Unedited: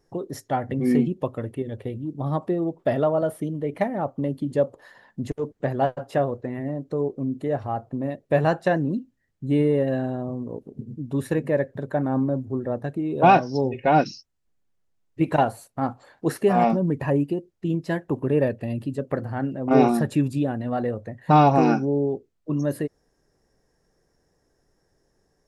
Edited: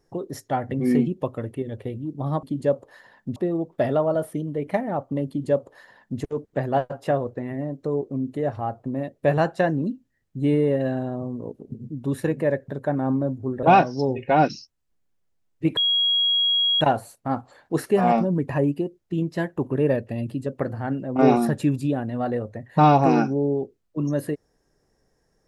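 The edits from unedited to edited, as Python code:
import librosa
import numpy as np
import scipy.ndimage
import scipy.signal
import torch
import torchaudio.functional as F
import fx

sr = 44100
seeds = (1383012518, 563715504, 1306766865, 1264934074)

y = fx.edit(x, sr, fx.duplicate(start_s=4.34, length_s=0.93, to_s=2.43),
    fx.cut(start_s=12.7, length_s=0.49),
    fx.insert_tone(at_s=15.33, length_s=1.04, hz=3300.0, db=-17.5), tone=tone)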